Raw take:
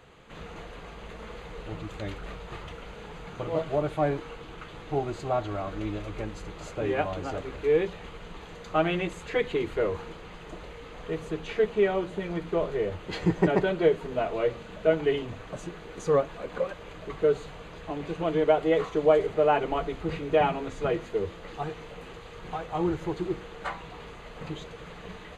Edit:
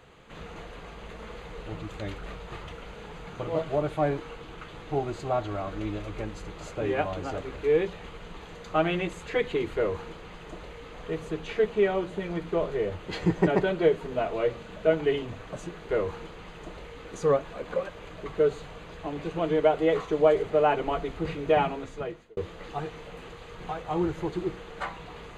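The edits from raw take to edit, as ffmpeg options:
ffmpeg -i in.wav -filter_complex "[0:a]asplit=4[link_01][link_02][link_03][link_04];[link_01]atrim=end=15.892[link_05];[link_02]atrim=start=9.748:end=10.912[link_06];[link_03]atrim=start=15.888:end=21.21,asetpts=PTS-STARTPTS,afade=type=out:start_time=4.592:duration=0.73[link_07];[link_04]atrim=start=21.21,asetpts=PTS-STARTPTS,afade=type=in:duration=0.004:curve=hsin[link_08];[link_05][link_06]acrossfade=duration=0.004:curve1=hsin:curve2=hsin[link_09];[link_07][link_08]concat=n=2:v=0:a=1[link_10];[link_09][link_10]acrossfade=duration=0.004:curve1=hsin:curve2=hsin" out.wav

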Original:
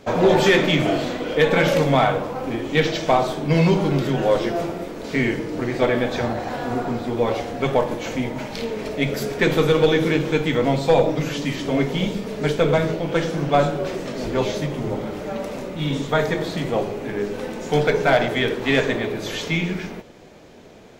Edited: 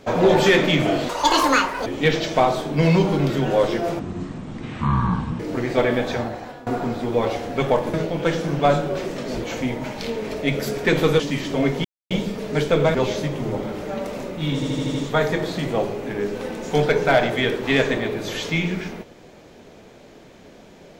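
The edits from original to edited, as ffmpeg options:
ffmpeg -i in.wav -filter_complex "[0:a]asplit=16[link_01][link_02][link_03][link_04][link_05][link_06][link_07][link_08][link_09][link_10][link_11][link_12][link_13][link_14][link_15][link_16];[link_01]atrim=end=1.094[link_17];[link_02]atrim=start=1.09:end=2.58,asetpts=PTS-STARTPTS,asetrate=85113,aresample=44100,atrim=end_sample=34046,asetpts=PTS-STARTPTS[link_18];[link_03]atrim=start=2.576:end=4.714[link_19];[link_04]atrim=start=4.71:end=5.44,asetpts=PTS-STARTPTS,asetrate=22932,aresample=44100[link_20];[link_05]atrim=start=5.436:end=6.71,asetpts=PTS-STARTPTS,afade=type=out:start_time=0.674:duration=0.6:silence=0.11885[link_21];[link_06]atrim=start=6.71:end=7.982,asetpts=PTS-STARTPTS,afade=type=in:duration=0.004:curve=hsin:silence=0.11885[link_22];[link_07]atrim=start=12.828:end=14.332[link_23];[link_08]atrim=start=7.978:end=9.742[link_24];[link_09]atrim=start=11.338:end=11.99,asetpts=PTS-STARTPTS,afade=type=out:start_time=0.648:duration=0.004:curve=hsin,apad=pad_dur=0.26[link_25];[link_10]atrim=start=11.99:end=12.832,asetpts=PTS-STARTPTS,afade=type=in:duration=0.004:curve=hsin[link_26];[link_11]atrim=start=14.328:end=16.012[link_27];[link_12]atrim=start=15.928:end=16.012[link_28];[link_13]atrim=start=15.928:end=16.012[link_29];[link_14]atrim=start=15.928:end=16.012[link_30];[link_15]atrim=start=15.928:end=16.012[link_31];[link_16]atrim=start=15.928[link_32];[link_17][link_18]acrossfade=duration=0.004:curve1=hsin:curve2=hsin[link_33];[link_33][link_19]acrossfade=duration=0.004:curve1=hsin:curve2=hsin[link_34];[link_34][link_20]acrossfade=duration=0.004:curve1=hsin:curve2=hsin[link_35];[link_21][link_22]concat=n=2:v=0:a=1[link_36];[link_35][link_36]acrossfade=duration=0.004:curve1=hsin:curve2=hsin[link_37];[link_37][link_23]acrossfade=duration=0.004:curve1=hsin:curve2=hsin[link_38];[link_38][link_24]acrossfade=duration=0.004:curve1=hsin:curve2=hsin[link_39];[link_25][link_26]concat=n=2:v=0:a=1[link_40];[link_39][link_40]acrossfade=duration=0.004:curve1=hsin:curve2=hsin[link_41];[link_41][link_27]acrossfade=duration=0.004:curve1=hsin:curve2=hsin[link_42];[link_42][link_28]acrossfade=duration=0.004:curve1=hsin:curve2=hsin[link_43];[link_43][link_29]acrossfade=duration=0.004:curve1=hsin:curve2=hsin[link_44];[link_44][link_30]acrossfade=duration=0.004:curve1=hsin:curve2=hsin[link_45];[link_45][link_31]acrossfade=duration=0.004:curve1=hsin:curve2=hsin[link_46];[link_46][link_32]acrossfade=duration=0.004:curve1=hsin:curve2=hsin" out.wav

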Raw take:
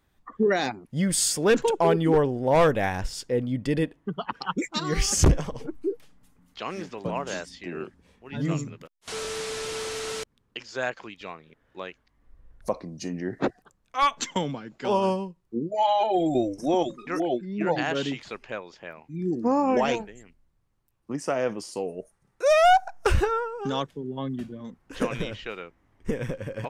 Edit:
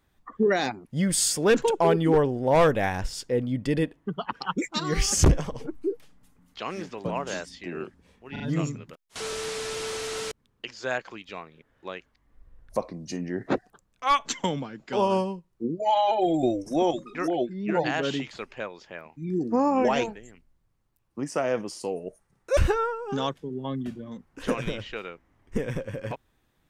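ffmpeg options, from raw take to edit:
ffmpeg -i in.wav -filter_complex "[0:a]asplit=4[link_01][link_02][link_03][link_04];[link_01]atrim=end=8.362[link_05];[link_02]atrim=start=8.318:end=8.362[link_06];[link_03]atrim=start=8.318:end=22.492[link_07];[link_04]atrim=start=23.098[link_08];[link_05][link_06]acrossfade=duration=0.004:curve1=hsin:curve2=hsin[link_09];[link_09][link_07]acrossfade=duration=0.004:curve1=hsin:curve2=hsin[link_10];[link_10][link_08]acrossfade=duration=0.004:curve1=hsin:curve2=hsin" out.wav

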